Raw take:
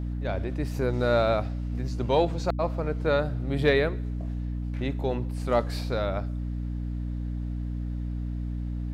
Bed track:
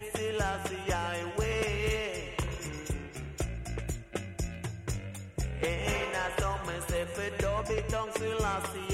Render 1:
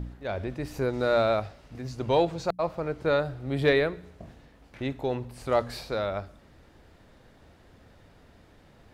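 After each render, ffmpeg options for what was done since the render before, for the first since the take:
-af "bandreject=f=60:t=h:w=4,bandreject=f=120:t=h:w=4,bandreject=f=180:t=h:w=4,bandreject=f=240:t=h:w=4,bandreject=f=300:t=h:w=4"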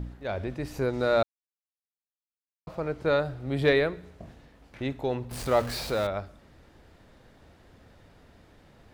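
-filter_complex "[0:a]asettb=1/sr,asplit=3[s0][s1][s2];[s0]atrim=end=5.314[s3];[s1]atrim=start=5.31:end=6.07,asetpts=PTS-STARTPTS,afade=t=in:d=0.004:c=qsin,afade=t=out:st=0.756:d=0.004:c=qsin,aeval=exprs='val(0)+0.5*0.0211*sgn(val(0))':c=same[s4];[s2]atrim=start=6.066[s5];[s3][s4]acrossfade=d=0.004:c1=hsin:c2=qsin[s6];[s6][s5]acrossfade=d=0.004:c1=qsin:c2=hsin,asplit=3[s7][s8][s9];[s7]atrim=end=1.23,asetpts=PTS-STARTPTS,afade=t=out:st=1.226:d=0.004:c=hsin[s10];[s8]atrim=start=1.23:end=2.67,asetpts=PTS-STARTPTS,volume=0[s11];[s9]atrim=start=2.67,asetpts=PTS-STARTPTS,afade=t=in:d=0.004:c=hsin[s12];[s10][s11][s12]concat=n=3:v=0:a=1"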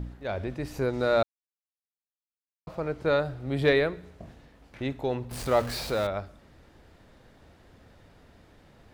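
-af anull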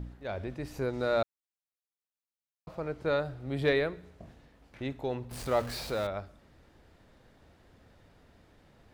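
-af "volume=0.596"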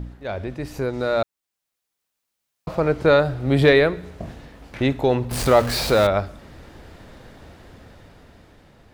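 -filter_complex "[0:a]asplit=2[s0][s1];[s1]alimiter=level_in=1.19:limit=0.0631:level=0:latency=1:release=422,volume=0.841,volume=1.41[s2];[s0][s2]amix=inputs=2:normalize=0,dynaudnorm=f=510:g=7:m=3.16"

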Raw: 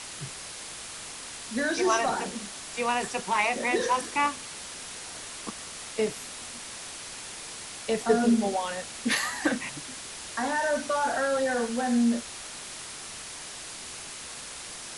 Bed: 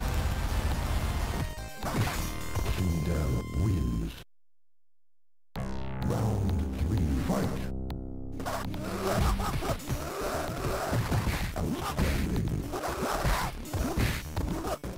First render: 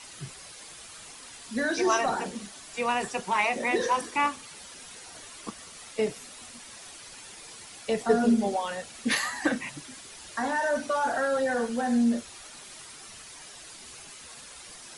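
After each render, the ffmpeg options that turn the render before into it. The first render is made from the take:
-af "afftdn=nr=9:nf=-41"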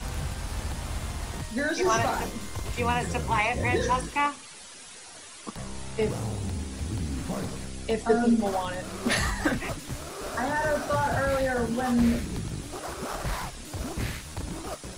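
-filter_complex "[1:a]volume=0.668[s0];[0:a][s0]amix=inputs=2:normalize=0"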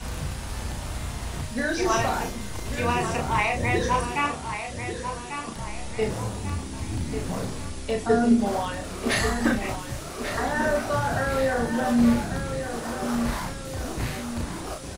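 -filter_complex "[0:a]asplit=2[s0][s1];[s1]adelay=34,volume=0.596[s2];[s0][s2]amix=inputs=2:normalize=0,asplit=2[s3][s4];[s4]adelay=1143,lowpass=f=4200:p=1,volume=0.398,asplit=2[s5][s6];[s6]adelay=1143,lowpass=f=4200:p=1,volume=0.46,asplit=2[s7][s8];[s8]adelay=1143,lowpass=f=4200:p=1,volume=0.46,asplit=2[s9][s10];[s10]adelay=1143,lowpass=f=4200:p=1,volume=0.46,asplit=2[s11][s12];[s12]adelay=1143,lowpass=f=4200:p=1,volume=0.46[s13];[s3][s5][s7][s9][s11][s13]amix=inputs=6:normalize=0"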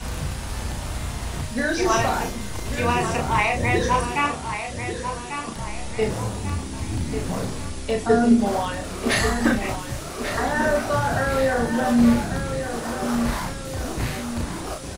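-af "volume=1.41"

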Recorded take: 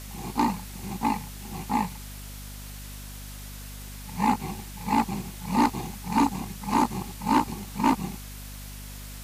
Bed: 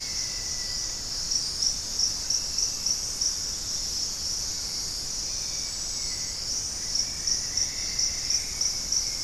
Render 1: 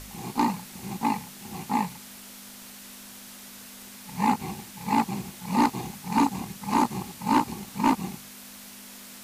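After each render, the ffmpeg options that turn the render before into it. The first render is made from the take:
-af "bandreject=f=50:t=h:w=4,bandreject=f=100:t=h:w=4,bandreject=f=150:t=h:w=4"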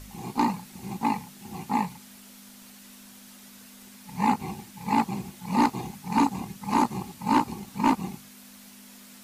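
-af "afftdn=nr=6:nf=-45"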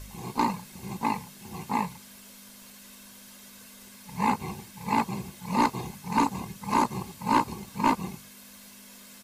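-af "aecho=1:1:1.9:0.4"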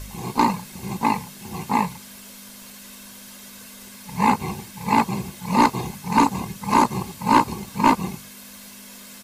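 -af "volume=2.24"

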